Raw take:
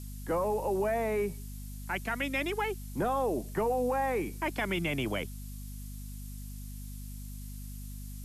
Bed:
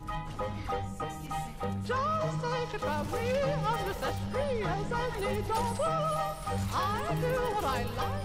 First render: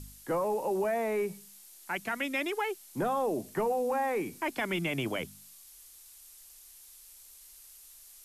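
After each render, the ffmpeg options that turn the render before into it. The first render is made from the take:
-af "bandreject=f=50:t=h:w=4,bandreject=f=100:t=h:w=4,bandreject=f=150:t=h:w=4,bandreject=f=200:t=h:w=4,bandreject=f=250:t=h:w=4"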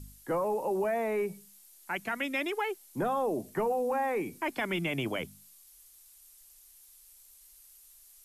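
-af "afftdn=nr=6:nf=-54"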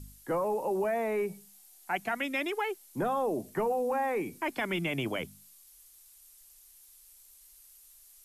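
-filter_complex "[0:a]asettb=1/sr,asplit=3[a][b][c];[a]atrim=end=1.314[d];[b]atrim=start=1.31:end=2.15,asetpts=PTS-STARTPTS,afade=t=in:d=0.004:c=qsin,afade=t=out:st=0.836:d=0.004:c=qsin,equalizer=f=750:t=o:w=0.23:g=10.5[e];[c]atrim=start=2.146[f];[d][e]acrossfade=d=0.004:c1=hsin:c2=qsin[g];[g][f]acrossfade=d=0.004:c1=qsin:c2=hsin"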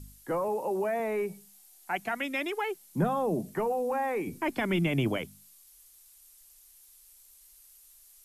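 -filter_complex "[0:a]asettb=1/sr,asplit=3[a][b][c];[a]atrim=end=0.484[d];[b]atrim=start=0.48:end=1,asetpts=PTS-STARTPTS,afade=t=in:d=0.004:c=qsin,afade=t=out:st=0.516:d=0.004:c=qsin,highpass=110[e];[c]atrim=start=0.996[f];[d][e]acrossfade=d=0.004:c1=hsin:c2=qsin[g];[g][f]acrossfade=d=0.004:c1=qsin:c2=hsin,asettb=1/sr,asplit=3[h][i][j];[h]atrim=end=2.634[k];[i]atrim=start=2.63:end=3.55,asetpts=PTS-STARTPTS,afade=t=in:d=0.004:c=qsin,afade=t=out:st=0.916:d=0.004:c=qsin,equalizer=f=170:w=2.1:g=14[l];[j]atrim=start=3.546[m];[k][l]acrossfade=d=0.004:c1=hsin:c2=qsin[n];[n][m]acrossfade=d=0.004:c1=qsin:c2=hsin,asettb=1/sr,asplit=3[o][p][q];[o]atrim=end=4.274[r];[p]atrim=start=4.27:end=5.18,asetpts=PTS-STARTPTS,afade=t=in:d=0.004:c=qsin,afade=t=out:st=0.906:d=0.004:c=qsin,lowshelf=f=320:g=10[s];[q]atrim=start=5.176[t];[r][s]acrossfade=d=0.004:c1=hsin:c2=qsin[u];[u][t]acrossfade=d=0.004:c1=qsin:c2=hsin"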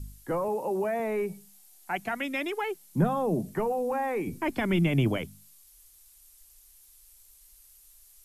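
-af "lowshelf=f=150:g=9"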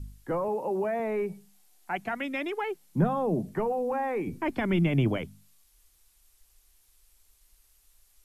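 -af "highshelf=f=5.1k:g=-11.5"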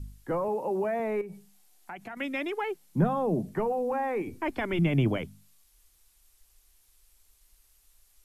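-filter_complex "[0:a]asettb=1/sr,asplit=3[a][b][c];[a]atrim=end=1.214[d];[b]atrim=start=1.21:end=2.17,asetpts=PTS-STARTPTS,afade=t=in:d=0.004:c=qsin,afade=t=out:st=0.956:d=0.004:c=qsin,acompressor=threshold=-37dB:ratio=6:attack=3.2:release=140:knee=1:detection=peak[e];[c]atrim=start=2.166[f];[d][e]acrossfade=d=0.004:c1=hsin:c2=qsin[g];[g][f]acrossfade=d=0.004:c1=qsin:c2=hsin,asettb=1/sr,asplit=3[h][i][j];[h]atrim=end=4.224[k];[i]atrim=start=4.22:end=4.79,asetpts=PTS-STARTPTS,afade=t=in:d=0.004:c=qsin,afade=t=out:st=0.566:d=0.004:c=qsin,equalizer=f=170:t=o:w=0.77:g=-13[l];[j]atrim=start=4.786[m];[k][l]acrossfade=d=0.004:c1=hsin:c2=qsin[n];[n][m]acrossfade=d=0.004:c1=qsin:c2=hsin"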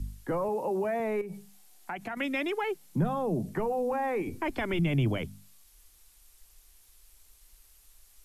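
-filter_complex "[0:a]acrossover=split=120|3000[a][b][c];[b]acompressor=threshold=-35dB:ratio=2[d];[a][d][c]amix=inputs=3:normalize=0,asplit=2[e][f];[f]alimiter=level_in=5dB:limit=-24dB:level=0:latency=1,volume=-5dB,volume=-3dB[g];[e][g]amix=inputs=2:normalize=0"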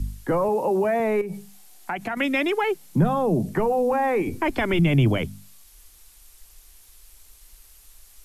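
-af "volume=8dB"

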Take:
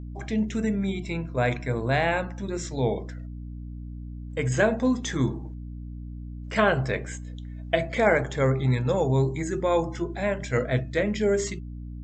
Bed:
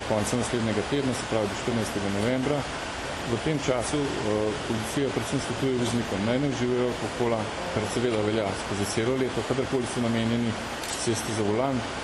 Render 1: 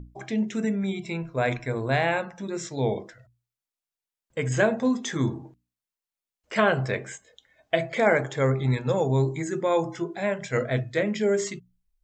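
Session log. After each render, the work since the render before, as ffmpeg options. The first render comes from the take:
-af "bandreject=f=60:t=h:w=6,bandreject=f=120:t=h:w=6,bandreject=f=180:t=h:w=6,bandreject=f=240:t=h:w=6,bandreject=f=300:t=h:w=6"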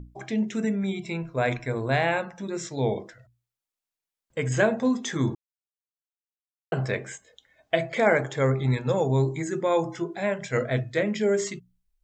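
-filter_complex "[0:a]asplit=3[a][b][c];[a]atrim=end=5.35,asetpts=PTS-STARTPTS,afade=t=out:st=5.346:d=0.004:c=hsin[d];[b]atrim=start=5.35:end=6.72,asetpts=PTS-STARTPTS,volume=0[e];[c]atrim=start=6.72,asetpts=PTS-STARTPTS,afade=t=in:d=0.004:c=hsin[f];[d][e][f]concat=n=3:v=0:a=1"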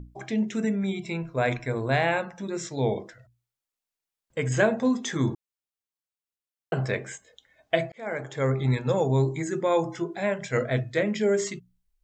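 -filter_complex "[0:a]asplit=2[a][b];[a]atrim=end=7.92,asetpts=PTS-STARTPTS,afade=t=out:st=7.916:d=0.004:c=hsin[c];[b]atrim=start=7.92,asetpts=PTS-STARTPTS,afade=t=in:d=0.69[d];[c][d]concat=n=2:v=0:a=1"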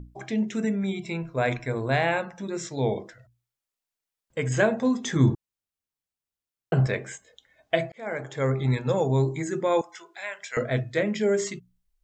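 -filter_complex "[0:a]asettb=1/sr,asplit=3[a][b][c];[a]atrim=end=5.044[d];[b]atrim=start=5.04:end=6.87,asetpts=PTS-STARTPTS,afade=t=in:d=0.004:c=qsin,afade=t=out:st=1.826:d=0.004:c=qsin,lowshelf=f=210:g=10.5[e];[c]atrim=start=6.866[f];[d][e]acrossfade=d=0.004:c1=hsin:c2=qsin[g];[g][f]acrossfade=d=0.004:c1=qsin:c2=hsin,asettb=1/sr,asplit=3[h][i][j];[h]atrim=end=9.814[k];[i]atrim=start=9.81:end=10.57,asetpts=PTS-STARTPTS,afade=t=in:d=0.004:c=qsin,afade=t=out:st=0.756:d=0.004:c=qsin,highpass=1.3k[l];[j]atrim=start=10.566[m];[k][l]acrossfade=d=0.004:c1=hsin:c2=qsin[n];[n][m]acrossfade=d=0.004:c1=qsin:c2=hsin"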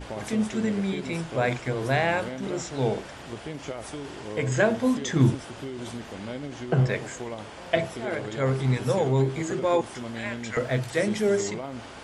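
-filter_complex "[1:a]volume=-10dB[a];[0:a][a]amix=inputs=2:normalize=0"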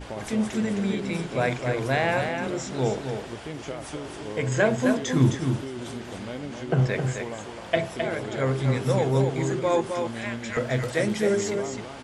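-af "aecho=1:1:262:0.501"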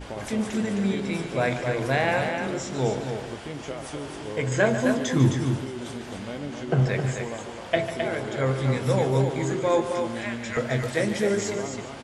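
-filter_complex "[0:a]asplit=2[a][b];[b]adelay=21,volume=-12dB[c];[a][c]amix=inputs=2:normalize=0,aecho=1:1:146:0.266"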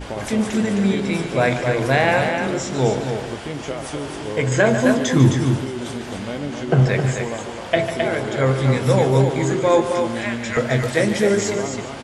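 -af "volume=6.5dB,alimiter=limit=-3dB:level=0:latency=1"

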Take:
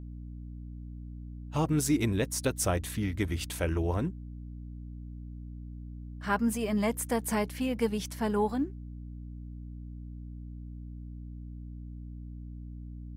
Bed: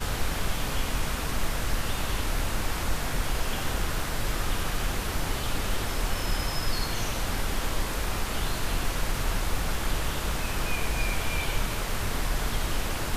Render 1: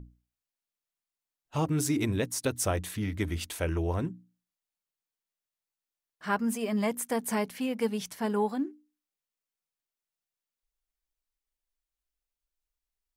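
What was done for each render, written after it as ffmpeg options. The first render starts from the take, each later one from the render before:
-af "bandreject=f=60:t=h:w=6,bandreject=f=120:t=h:w=6,bandreject=f=180:t=h:w=6,bandreject=f=240:t=h:w=6,bandreject=f=300:t=h:w=6"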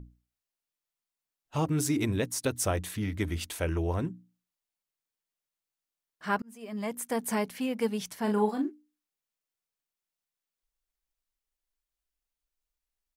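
-filter_complex "[0:a]asplit=3[a][b][c];[a]afade=t=out:st=8.26:d=0.02[d];[b]asplit=2[e][f];[f]adelay=38,volume=-5.5dB[g];[e][g]amix=inputs=2:normalize=0,afade=t=in:st=8.26:d=0.02,afade=t=out:st=8.69:d=0.02[h];[c]afade=t=in:st=8.69:d=0.02[i];[d][h][i]amix=inputs=3:normalize=0,asplit=2[j][k];[j]atrim=end=6.42,asetpts=PTS-STARTPTS,afade=t=out:st=6.416:d=0.004:c=hsin[l];[k]atrim=start=6.42,asetpts=PTS-STARTPTS,afade=t=in:d=0.79[m];[l][m]concat=n=2:v=0:a=1"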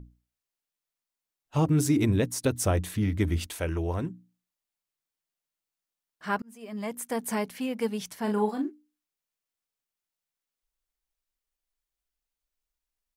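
-filter_complex "[0:a]asettb=1/sr,asplit=3[a][b][c];[a]atrim=end=1.564[d];[b]atrim=start=1.56:end=3.47,asetpts=PTS-STARTPTS,afade=t=in:d=0.004:c=qsin,afade=t=out:st=1.906:d=0.004:c=qsin,lowshelf=f=470:g=6.5[e];[c]atrim=start=3.466[f];[d][e]acrossfade=d=0.004:c1=hsin:c2=qsin[g];[g][f]acrossfade=d=0.004:c1=qsin:c2=hsin"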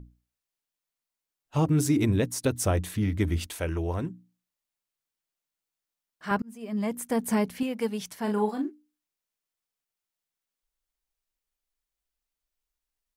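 -filter_complex "[0:a]asettb=1/sr,asplit=3[a][b][c];[a]atrim=end=6.314[d];[b]atrim=start=6.31:end=7.63,asetpts=PTS-STARTPTS,afade=t=in:d=0.004:c=qsin,afade=t=out:st=1.316:d=0.004:c=qsin,lowshelf=f=280:g=10.5[e];[c]atrim=start=7.626[f];[d][e]acrossfade=d=0.004:c1=hsin:c2=qsin[g];[g][f]acrossfade=d=0.004:c1=qsin:c2=hsin"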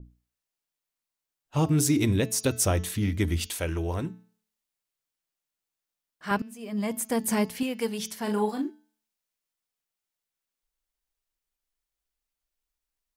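-af "bandreject=f=218.2:t=h:w=4,bandreject=f=436.4:t=h:w=4,bandreject=f=654.6:t=h:w=4,bandreject=f=872.8:t=h:w=4,bandreject=f=1.091k:t=h:w=4,bandreject=f=1.3092k:t=h:w=4,bandreject=f=1.5274k:t=h:w=4,bandreject=f=1.7456k:t=h:w=4,bandreject=f=1.9638k:t=h:w=4,bandreject=f=2.182k:t=h:w=4,bandreject=f=2.4002k:t=h:w=4,bandreject=f=2.6184k:t=h:w=4,bandreject=f=2.8366k:t=h:w=4,bandreject=f=3.0548k:t=h:w=4,bandreject=f=3.273k:t=h:w=4,bandreject=f=3.4912k:t=h:w=4,bandreject=f=3.7094k:t=h:w=4,bandreject=f=3.9276k:t=h:w=4,bandreject=f=4.1458k:t=h:w=4,bandreject=f=4.364k:t=h:w=4,bandreject=f=4.5822k:t=h:w=4,bandreject=f=4.8004k:t=h:w=4,bandreject=f=5.0186k:t=h:w=4,bandreject=f=5.2368k:t=h:w=4,bandreject=f=5.455k:t=h:w=4,bandreject=f=5.6732k:t=h:w=4,bandreject=f=5.8914k:t=h:w=4,bandreject=f=6.1096k:t=h:w=4,bandreject=f=6.3278k:t=h:w=4,bandreject=f=6.546k:t=h:w=4,bandreject=f=6.7642k:t=h:w=4,bandreject=f=6.9824k:t=h:w=4,adynamicequalizer=threshold=0.00447:dfrequency=2300:dqfactor=0.7:tfrequency=2300:tqfactor=0.7:attack=5:release=100:ratio=0.375:range=3:mode=boostabove:tftype=highshelf"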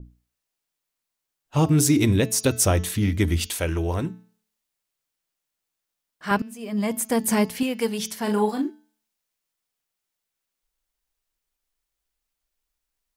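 -af "volume=4.5dB"

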